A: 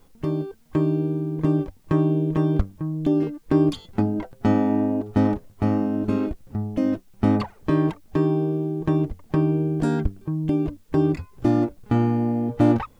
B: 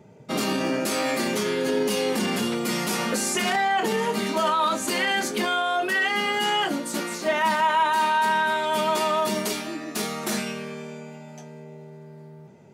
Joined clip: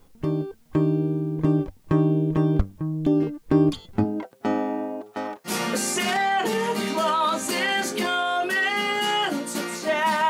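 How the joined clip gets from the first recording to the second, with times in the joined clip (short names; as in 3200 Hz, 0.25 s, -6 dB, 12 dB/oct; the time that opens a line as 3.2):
A
4.03–5.52 HPF 220 Hz -> 870 Hz
5.48 switch to B from 2.87 s, crossfade 0.08 s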